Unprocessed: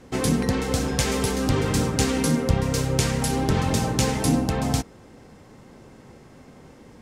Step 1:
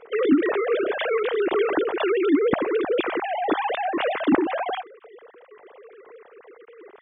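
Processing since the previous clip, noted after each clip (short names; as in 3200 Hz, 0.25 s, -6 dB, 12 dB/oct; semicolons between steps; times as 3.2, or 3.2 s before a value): sine-wave speech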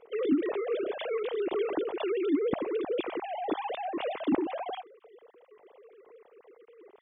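bell 1600 Hz -9.5 dB 0.89 oct; gain -7.5 dB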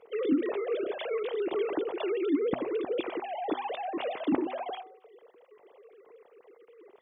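HPF 50 Hz; de-hum 125.4 Hz, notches 10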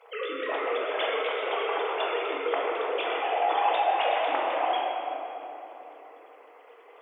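HPF 650 Hz 24 dB/oct; shoebox room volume 190 m³, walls hard, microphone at 0.69 m; gain +7 dB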